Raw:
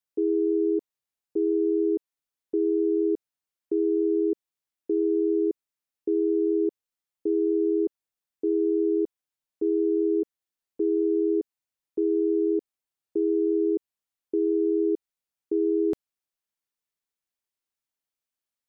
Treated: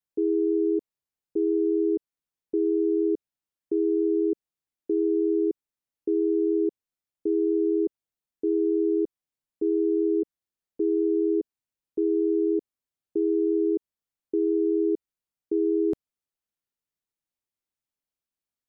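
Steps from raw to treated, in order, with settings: bass shelf 460 Hz +7.5 dB; trim -4.5 dB

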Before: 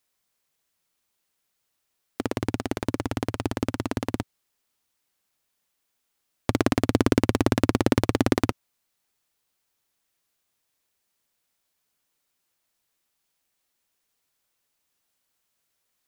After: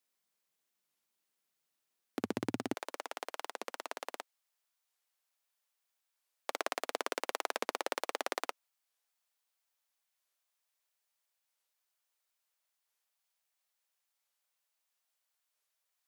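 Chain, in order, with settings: high-pass 140 Hz 24 dB/octave, from 2.74 s 540 Hz; warped record 45 rpm, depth 250 cents; trim -7.5 dB

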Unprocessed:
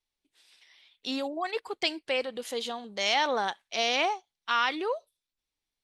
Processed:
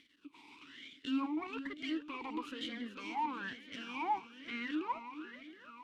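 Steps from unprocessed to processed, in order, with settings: peaking EQ 970 Hz +10.5 dB 0.64 oct; reverse; compression 10:1, threshold -35 dBFS, peak gain reduction 19 dB; reverse; peak limiter -33 dBFS, peak gain reduction 10.5 dB; in parallel at +1 dB: upward compressor, threshold -44 dBFS; on the sum: half-wave rectifier; shuffle delay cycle 720 ms, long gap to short 1.5:1, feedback 47%, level -11 dB; talking filter i-u 1.1 Hz; trim +14 dB

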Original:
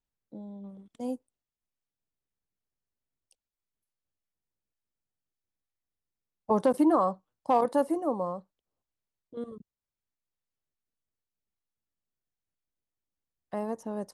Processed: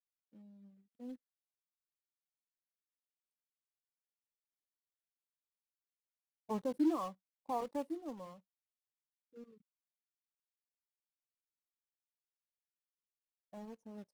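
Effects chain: block-companded coder 3-bit; dynamic bell 570 Hz, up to -5 dB, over -38 dBFS, Q 1.1; spectral contrast expander 1.5:1; trim -8 dB

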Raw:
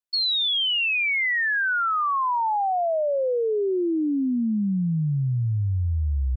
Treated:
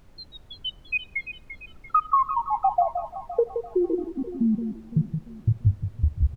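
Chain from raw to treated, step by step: random holes in the spectrogram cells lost 78%; low-pass 1.8 kHz 24 dB/octave; comb 1.7 ms, depth 100%; compression, threshold -27 dBFS, peak gain reduction 9.5 dB; added noise brown -57 dBFS; echo whose repeats swap between lows and highs 171 ms, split 1 kHz, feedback 67%, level -7.5 dB; on a send at -20 dB: reverberation RT60 1.4 s, pre-delay 3 ms; on the sum: trim +8.5 dB

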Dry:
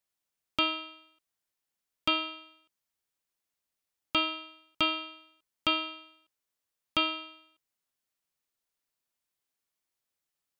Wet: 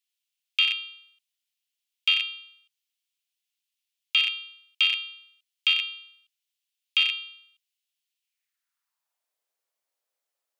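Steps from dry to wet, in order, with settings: rattle on loud lows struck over -49 dBFS, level -18 dBFS; high-pass sweep 2.9 kHz -> 540 Hz, 8.20–9.36 s

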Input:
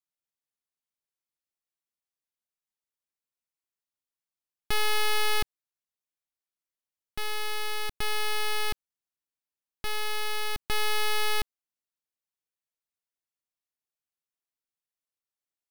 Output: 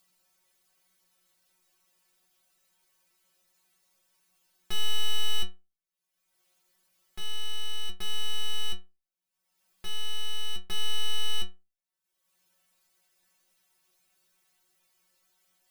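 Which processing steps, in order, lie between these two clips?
upward compressor, threshold -46 dBFS; inharmonic resonator 180 Hz, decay 0.27 s, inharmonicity 0.002; trim +7 dB

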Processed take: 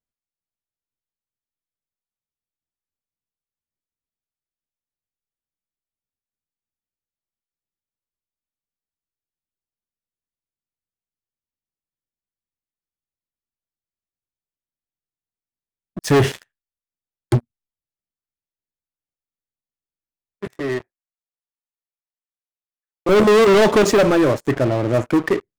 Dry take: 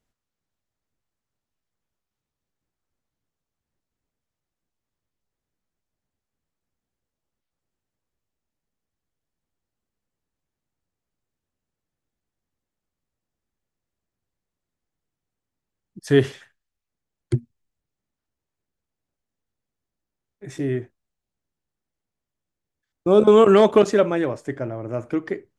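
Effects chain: 20.47–23.09 s: three-band isolator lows -17 dB, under 530 Hz, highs -15 dB, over 2.2 kHz; waveshaping leveller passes 5; trim -6 dB

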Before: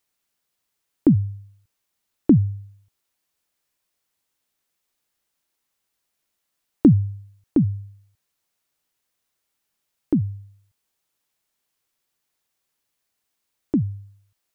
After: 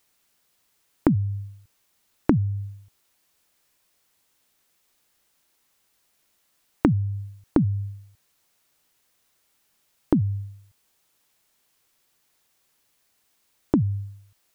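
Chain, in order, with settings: compression 10:1, threshold -26 dBFS, peak gain reduction 17.5 dB; trim +9 dB

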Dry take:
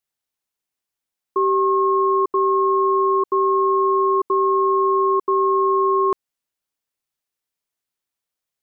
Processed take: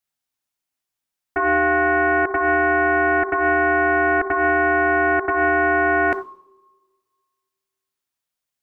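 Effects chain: peaking EQ 450 Hz -6.5 dB 0.32 oct; two-slope reverb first 0.64 s, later 1.8 s, DRR 6.5 dB; loudspeaker Doppler distortion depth 0.55 ms

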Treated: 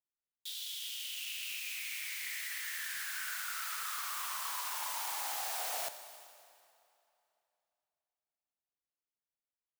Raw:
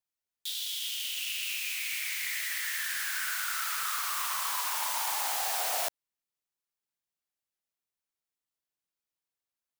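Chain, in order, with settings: Schroeder reverb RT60 2.9 s, combs from 29 ms, DRR 10 dB; tape noise reduction on one side only decoder only; trim -7 dB

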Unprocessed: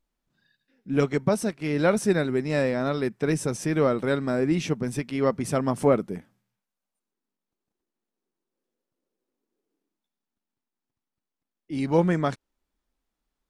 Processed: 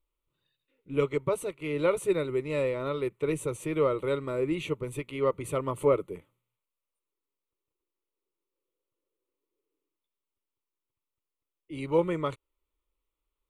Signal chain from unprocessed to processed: static phaser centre 1.1 kHz, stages 8; trim -1.5 dB

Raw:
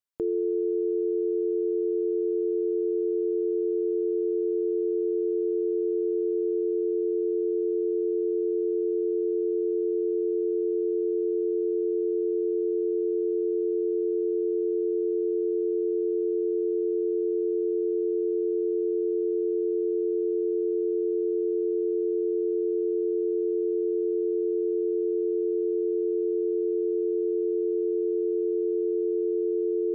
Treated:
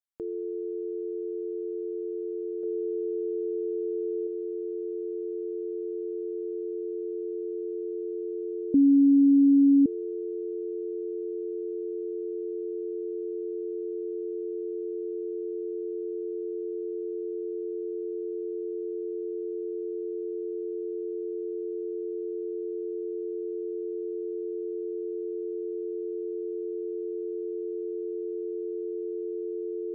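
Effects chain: 2.63–4.27 s: dynamic bell 530 Hz, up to +5 dB, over -41 dBFS, Q 1.5; 8.74–9.86 s: bleep 279 Hz -8 dBFS; trim -7 dB

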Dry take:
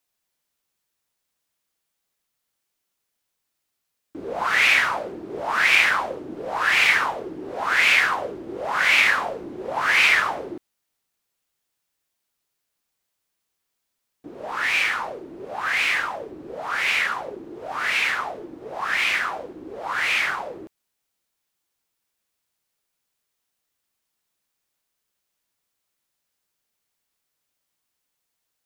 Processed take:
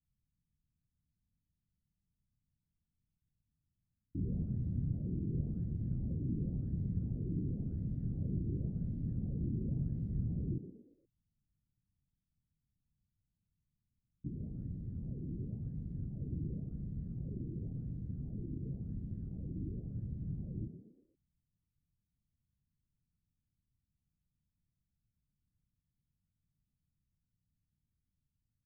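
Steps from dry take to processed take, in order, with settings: inverse Chebyshev low-pass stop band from 930 Hz, stop band 80 dB; frequency-shifting echo 118 ms, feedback 36%, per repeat +52 Hz, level -11.5 dB; trim +15.5 dB

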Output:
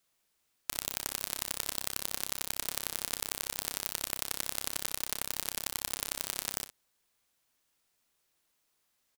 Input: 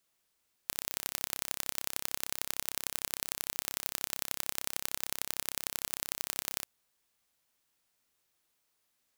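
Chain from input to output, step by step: harmony voices -12 st -9 dB, -3 st -17 dB; early reflections 41 ms -17.5 dB, 60 ms -12.5 dB

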